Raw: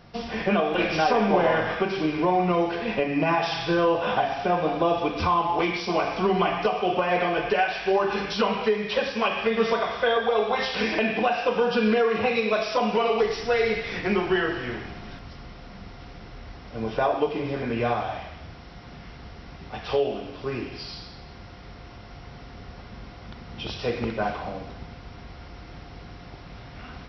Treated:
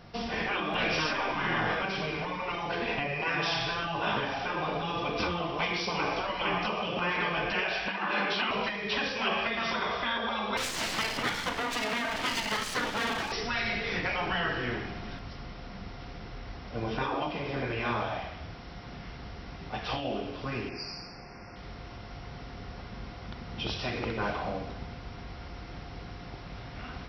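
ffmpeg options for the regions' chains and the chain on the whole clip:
-filter_complex "[0:a]asettb=1/sr,asplit=3[s0][s1][s2];[s0]atrim=end=7.884[s3];[s1]atrim=start=7.88:end=8.51,asetpts=PTS-STARTPTS,afade=t=in:d=0.004:c=qsin,afade=t=out:st=0.626:d=0.004:c=qsin,acontrast=26,highpass=310,lowpass=2800[s4];[s2]atrim=start=8.506[s5];[s3][s4]acrossfade=d=0.004:c1=hsin:c2=qsin[s6];[s6][s5]acrossfade=d=0.004:c1=qsin:c2=hsin,asettb=1/sr,asplit=3[s7][s8][s9];[s7]atrim=end=10.574[s10];[s8]atrim=start=10.57:end=13.32,asetpts=PTS-STARTPTS,afade=t=in:d=0.004:c=qsin,afade=t=out:st=2.746:d=0.004:c=qsin,lowshelf=f=340:g=-9,aeval=exprs='abs(val(0))':c=same[s11];[s9]atrim=start=13.316[s12];[s10][s11]acrossfade=d=0.004:c1=hsin:c2=qsin[s13];[s13][s12]acrossfade=d=0.004:c1=qsin:c2=hsin,asettb=1/sr,asplit=3[s14][s15][s16];[s14]atrim=end=20.694[s17];[s15]atrim=start=20.69:end=21.56,asetpts=PTS-STARTPTS,afade=t=in:d=0.004:c=qsin,afade=t=out:st=0.866:d=0.004:c=qsin,asuperstop=centerf=3500:order=12:qfactor=2,equalizer=f=63:t=o:w=1.5:g=-10.5[s18];[s16]atrim=start=21.556[s19];[s17][s18]acrossfade=d=0.004:c1=hsin:c2=qsin[s20];[s20][s19]acrossfade=d=0.004:c1=qsin:c2=hsin,bandreject=f=75.07:t=h:w=4,bandreject=f=150.14:t=h:w=4,bandreject=f=225.21:t=h:w=4,bandreject=f=300.28:t=h:w=4,bandreject=f=375.35:t=h:w=4,bandreject=f=450.42:t=h:w=4,bandreject=f=525.49:t=h:w=4,bandreject=f=600.56:t=h:w=4,afftfilt=real='re*lt(hypot(re,im),0.224)':imag='im*lt(hypot(re,im),0.224)':win_size=1024:overlap=0.75"

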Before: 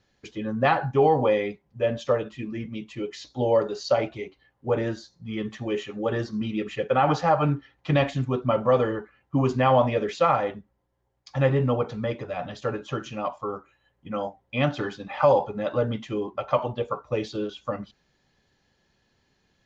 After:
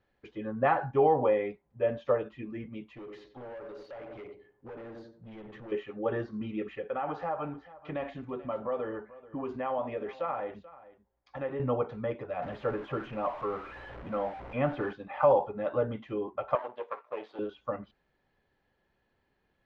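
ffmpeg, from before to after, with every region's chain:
-filter_complex "[0:a]asettb=1/sr,asplit=3[s0][s1][s2];[s0]atrim=end=2.924[s3];[s1]atrim=start=2.92:end=5.72,asetpts=PTS-STARTPTS,afade=t=in:d=0.004:c=qsin,afade=t=out:st=2.796:d=0.004:c=qsin,asplit=2[s4][s5];[s5]adelay=91,lowpass=f=1200:p=1,volume=0.335,asplit=2[s6][s7];[s7]adelay=91,lowpass=f=1200:p=1,volume=0.36,asplit=2[s8][s9];[s9]adelay=91,lowpass=f=1200:p=1,volume=0.36,asplit=2[s10][s11];[s11]adelay=91,lowpass=f=1200:p=1,volume=0.36[s12];[s4][s6][s8][s10][s12]amix=inputs=5:normalize=0,atrim=end_sample=123480,acompressor=threshold=0.0251:ratio=6:attack=3.2:release=140:knee=1:detection=peak,asoftclip=type=hard:threshold=0.015[s13];[s2]atrim=start=5.716[s14];[s3][s13]acrossfade=d=0.004:c1=hsin:c2=qsin[s15];[s15][s14]acrossfade=d=0.004:c1=qsin:c2=hsin,asettb=1/sr,asplit=3[s16][s17][s18];[s16]atrim=end=6.754[s19];[s17]atrim=start=6.75:end=11.6,asetpts=PTS-STARTPTS,afade=t=in:d=0.004:c=qsin,afade=t=out:st=4.846:d=0.004:c=qsin,equalizer=f=130:w=7.2:g=-14.5,acompressor=threshold=0.0282:ratio=2:attack=3.2:release=140:knee=1:detection=peak,aecho=1:1:435:0.119,atrim=end_sample=213885[s20];[s18]atrim=start=11.596[s21];[s19][s20]acrossfade=d=0.004:c1=hsin:c2=qsin[s22];[s22][s21]acrossfade=d=0.004:c1=qsin:c2=hsin,asettb=1/sr,asplit=3[s23][s24][s25];[s23]atrim=end=12.424[s26];[s24]atrim=start=12.42:end=14.93,asetpts=PTS-STARTPTS,afade=t=in:d=0.004:c=qsin,afade=t=out:st=2.506:d=0.004:c=qsin,aeval=exprs='val(0)+0.5*0.0251*sgn(val(0))':c=same,highshelf=f=4600:g=-11.5[s27];[s25]atrim=start=14.926[s28];[s26][s27]acrossfade=d=0.004:c1=hsin:c2=qsin[s29];[s29][s28]acrossfade=d=0.004:c1=qsin:c2=hsin,asettb=1/sr,asplit=3[s30][s31][s32];[s30]atrim=end=16.554[s33];[s31]atrim=start=16.55:end=17.39,asetpts=PTS-STARTPTS,afade=t=in:d=0.004:c=qsin,afade=t=out:st=0.836:d=0.004:c=qsin,aeval=exprs='if(lt(val(0),0),0.251*val(0),val(0))':c=same,highpass=450,lowpass=5800[s34];[s32]atrim=start=17.386[s35];[s33][s34]acrossfade=d=0.004:c1=hsin:c2=qsin[s36];[s36][s35]acrossfade=d=0.004:c1=qsin:c2=hsin,aemphasis=mode=reproduction:type=bsi,acrossover=split=2800[s37][s38];[s38]acompressor=threshold=0.00316:ratio=4:attack=1:release=60[s39];[s37][s39]amix=inputs=2:normalize=0,bass=f=250:g=-15,treble=f=4000:g=-14,volume=0.631"

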